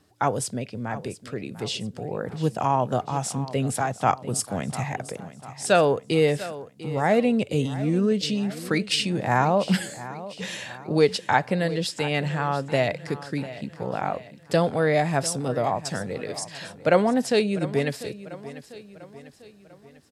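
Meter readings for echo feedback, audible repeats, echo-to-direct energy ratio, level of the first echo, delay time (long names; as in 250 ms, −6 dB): 49%, 4, −14.5 dB, −15.5 dB, 696 ms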